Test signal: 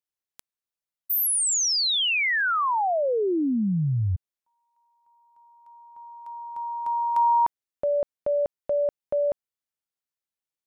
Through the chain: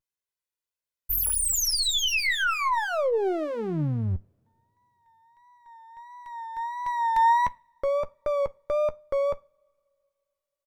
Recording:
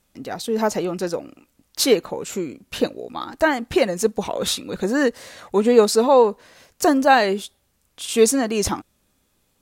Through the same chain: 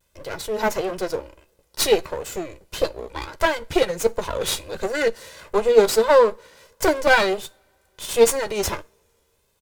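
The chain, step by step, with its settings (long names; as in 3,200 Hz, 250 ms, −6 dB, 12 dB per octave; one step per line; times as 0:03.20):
lower of the sound and its delayed copy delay 2 ms
pitch vibrato 1.5 Hz 67 cents
double-tracking delay 13 ms −13 dB
coupled-rooms reverb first 0.31 s, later 2.8 s, from −28 dB, DRR 18 dB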